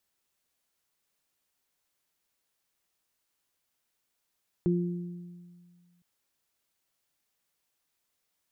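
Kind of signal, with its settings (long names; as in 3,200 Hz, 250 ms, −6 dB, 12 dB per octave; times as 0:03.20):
harmonic partials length 1.36 s, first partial 175 Hz, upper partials −1.5 dB, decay 1.90 s, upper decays 1.12 s, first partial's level −23 dB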